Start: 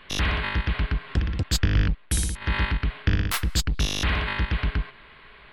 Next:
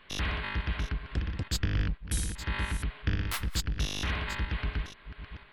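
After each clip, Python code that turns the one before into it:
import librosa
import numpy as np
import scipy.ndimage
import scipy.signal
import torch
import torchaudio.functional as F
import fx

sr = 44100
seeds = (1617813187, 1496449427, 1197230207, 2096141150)

y = fx.reverse_delay(x, sr, ms=494, wet_db=-11.5)
y = y * 10.0 ** (-7.5 / 20.0)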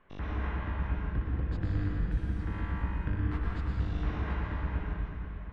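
y = scipy.signal.sosfilt(scipy.signal.butter(2, 1200.0, 'lowpass', fs=sr, output='sos'), x)
y = fx.rev_plate(y, sr, seeds[0], rt60_s=2.6, hf_ratio=0.9, predelay_ms=90, drr_db=-3.5)
y = y * 10.0 ** (-4.0 / 20.0)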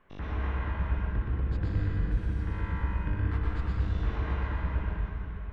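y = x + 10.0 ** (-4.5 / 20.0) * np.pad(x, (int(122 * sr / 1000.0), 0))[:len(x)]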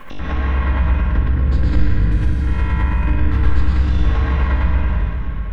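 y = fx.high_shelf(x, sr, hz=2700.0, db=8.0)
y = fx.room_shoebox(y, sr, seeds[1], volume_m3=660.0, walls='furnished', distance_m=2.2)
y = fx.pre_swell(y, sr, db_per_s=83.0)
y = y * 10.0 ** (6.5 / 20.0)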